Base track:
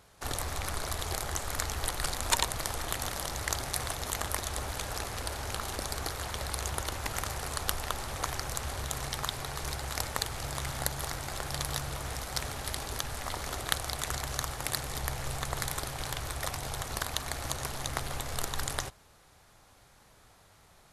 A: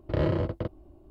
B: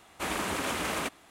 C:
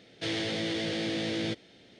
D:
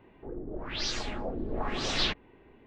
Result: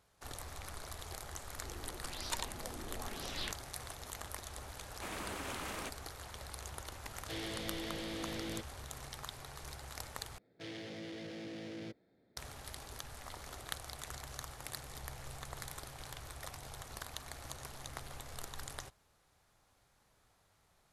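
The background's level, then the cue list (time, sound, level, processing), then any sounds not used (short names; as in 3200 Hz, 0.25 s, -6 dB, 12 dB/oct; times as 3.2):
base track -12 dB
1.39 add D -13.5 dB
4.81 add B -11.5 dB
7.07 add C -10.5 dB
10.38 replace with C -13 dB + Wiener smoothing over 15 samples
not used: A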